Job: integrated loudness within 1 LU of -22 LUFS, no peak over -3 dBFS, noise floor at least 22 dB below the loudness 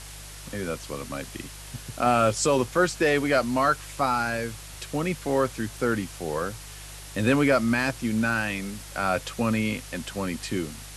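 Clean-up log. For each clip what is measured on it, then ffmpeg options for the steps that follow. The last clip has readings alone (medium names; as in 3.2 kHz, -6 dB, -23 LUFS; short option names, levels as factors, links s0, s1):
hum 50 Hz; highest harmonic 150 Hz; hum level -42 dBFS; noise floor -42 dBFS; noise floor target -48 dBFS; loudness -26.0 LUFS; peak level -9.0 dBFS; loudness target -22.0 LUFS
-> -af "bandreject=f=50:t=h:w=4,bandreject=f=100:t=h:w=4,bandreject=f=150:t=h:w=4"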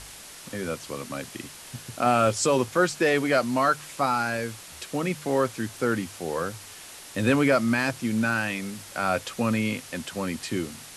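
hum not found; noise floor -44 dBFS; noise floor target -48 dBFS
-> -af "afftdn=nr=6:nf=-44"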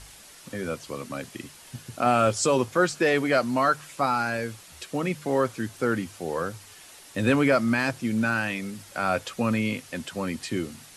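noise floor -49 dBFS; loudness -26.0 LUFS; peak level -9.0 dBFS; loudness target -22.0 LUFS
-> -af "volume=1.58"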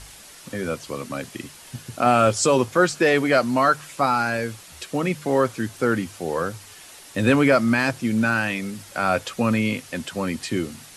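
loudness -22.0 LUFS; peak level -5.0 dBFS; noise floor -45 dBFS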